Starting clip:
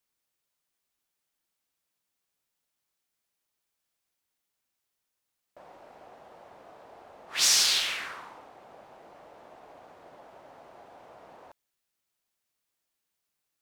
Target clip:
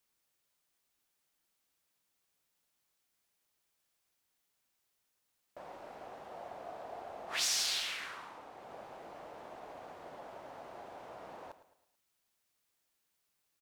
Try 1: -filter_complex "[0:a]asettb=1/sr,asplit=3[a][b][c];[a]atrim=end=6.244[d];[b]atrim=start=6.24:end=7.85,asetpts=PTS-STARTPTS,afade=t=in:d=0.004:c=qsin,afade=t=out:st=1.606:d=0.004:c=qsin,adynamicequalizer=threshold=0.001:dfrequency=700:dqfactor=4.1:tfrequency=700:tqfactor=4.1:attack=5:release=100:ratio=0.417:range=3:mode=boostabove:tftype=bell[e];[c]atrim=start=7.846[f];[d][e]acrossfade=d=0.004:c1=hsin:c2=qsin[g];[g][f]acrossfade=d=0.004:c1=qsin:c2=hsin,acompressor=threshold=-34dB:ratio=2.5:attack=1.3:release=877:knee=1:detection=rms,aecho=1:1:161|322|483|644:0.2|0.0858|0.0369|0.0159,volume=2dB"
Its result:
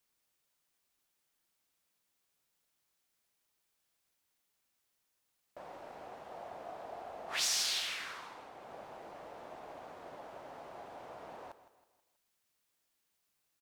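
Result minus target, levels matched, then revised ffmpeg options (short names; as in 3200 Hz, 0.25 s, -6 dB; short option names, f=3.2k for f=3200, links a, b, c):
echo 52 ms late
-filter_complex "[0:a]asettb=1/sr,asplit=3[a][b][c];[a]atrim=end=6.244[d];[b]atrim=start=6.24:end=7.85,asetpts=PTS-STARTPTS,afade=t=in:d=0.004:c=qsin,afade=t=out:st=1.606:d=0.004:c=qsin,adynamicequalizer=threshold=0.001:dfrequency=700:dqfactor=4.1:tfrequency=700:tqfactor=4.1:attack=5:release=100:ratio=0.417:range=3:mode=boostabove:tftype=bell[e];[c]atrim=start=7.846[f];[d][e]acrossfade=d=0.004:c1=hsin:c2=qsin[g];[g][f]acrossfade=d=0.004:c1=qsin:c2=hsin,acompressor=threshold=-34dB:ratio=2.5:attack=1.3:release=877:knee=1:detection=rms,aecho=1:1:109|218|327|436:0.2|0.0858|0.0369|0.0159,volume=2dB"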